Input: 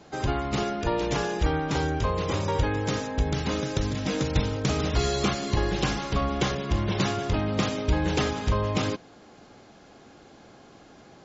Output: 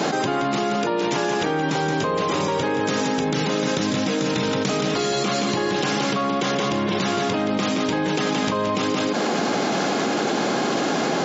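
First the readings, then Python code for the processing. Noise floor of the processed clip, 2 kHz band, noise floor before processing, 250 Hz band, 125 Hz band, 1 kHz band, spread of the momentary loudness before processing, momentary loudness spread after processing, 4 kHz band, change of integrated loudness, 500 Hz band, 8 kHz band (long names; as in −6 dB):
−23 dBFS, +7.5 dB, −52 dBFS, +7.0 dB, −2.5 dB, +7.5 dB, 3 LU, 0 LU, +7.0 dB, +5.0 dB, +7.0 dB, can't be measured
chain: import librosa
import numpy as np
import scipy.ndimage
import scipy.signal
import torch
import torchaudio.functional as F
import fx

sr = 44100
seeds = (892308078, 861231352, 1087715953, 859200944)

y = scipy.signal.sosfilt(scipy.signal.butter(4, 170.0, 'highpass', fs=sr, output='sos'), x)
y = y + 10.0 ** (-7.5 / 20.0) * np.pad(y, (int(173 * sr / 1000.0), 0))[:len(y)]
y = fx.env_flatten(y, sr, amount_pct=100)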